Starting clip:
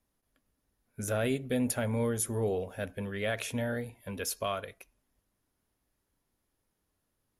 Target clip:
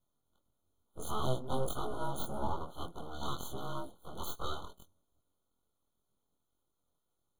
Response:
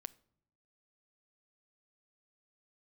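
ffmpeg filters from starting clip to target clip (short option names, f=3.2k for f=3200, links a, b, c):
-af "afftfilt=real='re':imag='-im':win_size=2048:overlap=0.75,aeval=exprs='abs(val(0))':c=same,afftfilt=real='re*eq(mod(floor(b*sr/1024/1500),2),0)':imag='im*eq(mod(floor(b*sr/1024/1500),2),0)':win_size=1024:overlap=0.75,volume=3.5dB"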